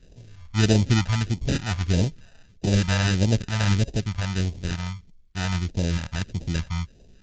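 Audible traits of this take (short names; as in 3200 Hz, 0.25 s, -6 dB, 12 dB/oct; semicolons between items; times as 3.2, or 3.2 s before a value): aliases and images of a low sample rate 1100 Hz, jitter 0%; phasing stages 2, 1.6 Hz, lowest notch 350–1300 Hz; SBC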